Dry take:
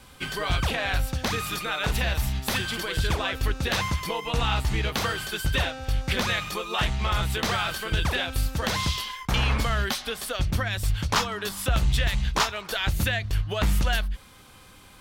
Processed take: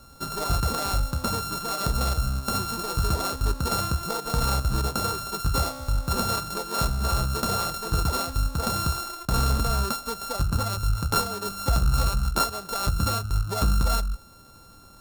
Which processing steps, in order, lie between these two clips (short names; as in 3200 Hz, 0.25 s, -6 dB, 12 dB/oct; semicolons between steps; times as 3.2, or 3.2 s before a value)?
sample sorter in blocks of 32 samples; band shelf 2300 Hz -10 dB 1.1 oct; gain +1 dB